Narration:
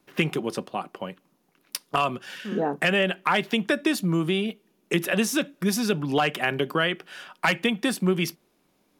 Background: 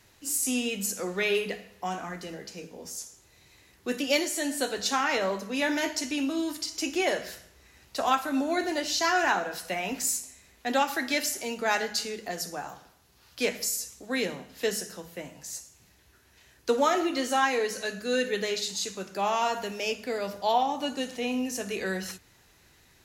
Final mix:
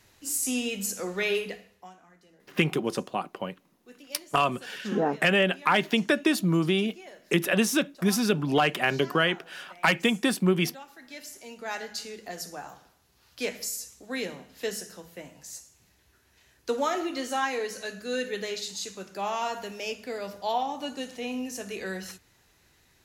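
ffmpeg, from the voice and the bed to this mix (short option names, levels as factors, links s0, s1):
-filter_complex "[0:a]adelay=2400,volume=1[s0];[1:a]volume=6.68,afade=t=out:st=1.3:d=0.64:silence=0.1,afade=t=in:st=10.98:d=1.42:silence=0.141254[s1];[s0][s1]amix=inputs=2:normalize=0"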